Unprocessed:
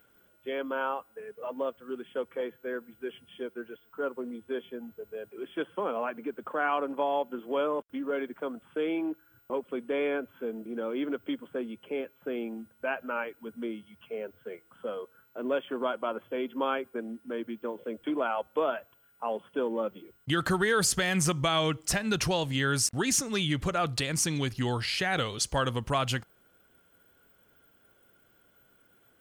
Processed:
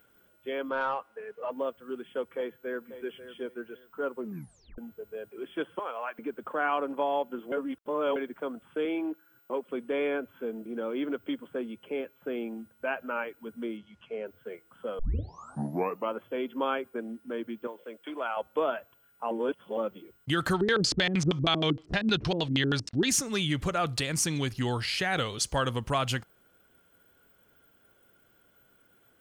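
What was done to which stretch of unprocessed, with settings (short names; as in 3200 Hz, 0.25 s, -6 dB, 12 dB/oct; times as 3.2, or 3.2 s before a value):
0.69–1.51 overdrive pedal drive 10 dB, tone 2200 Hz, clips at -19.5 dBFS
2.23–2.95 echo throw 0.54 s, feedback 25%, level -12.5 dB
4.21 tape stop 0.57 s
5.79–6.19 HPF 780 Hz
7.52–8.16 reverse
8.85–9.69 HPF 210 Hz
13.77–14.26 LPF 7100 Hz
14.99 tape start 1.15 s
17.67–18.37 HPF 830 Hz 6 dB/oct
19.31–19.77 reverse
20.53–23.09 LFO low-pass square 6.4 Hz 310–4200 Hz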